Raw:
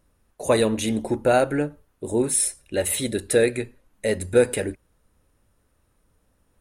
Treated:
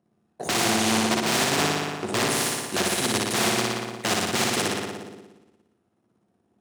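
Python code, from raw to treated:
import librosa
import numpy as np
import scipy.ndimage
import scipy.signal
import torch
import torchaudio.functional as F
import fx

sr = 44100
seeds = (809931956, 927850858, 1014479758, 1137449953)

y = (np.mod(10.0 ** (18.0 / 20.0) * x + 1.0, 2.0) - 1.0) / 10.0 ** (18.0 / 20.0)
y = fx.air_absorb(y, sr, metres=85.0)
y = fx.room_flutter(y, sr, wall_m=10.1, rt60_s=1.4)
y = fx.power_curve(y, sr, exponent=1.4)
y = scipy.signal.sosfilt(scipy.signal.butter(4, 98.0, 'highpass', fs=sr, output='sos'), y)
y = fx.high_shelf(y, sr, hz=6700.0, db=6.0)
y = fx.small_body(y, sr, hz=(210.0, 350.0, 700.0), ring_ms=40, db=14)
y = fx.spectral_comp(y, sr, ratio=2.0)
y = y * librosa.db_to_amplitude(-5.0)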